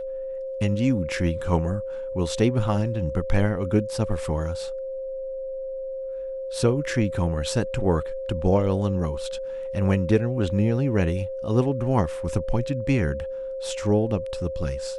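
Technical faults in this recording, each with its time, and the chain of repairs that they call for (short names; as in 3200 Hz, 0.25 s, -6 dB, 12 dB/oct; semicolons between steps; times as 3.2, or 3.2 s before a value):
tone 530 Hz -29 dBFS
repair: notch 530 Hz, Q 30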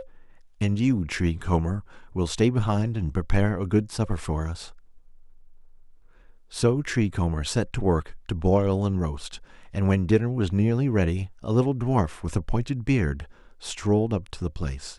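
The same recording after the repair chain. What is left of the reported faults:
none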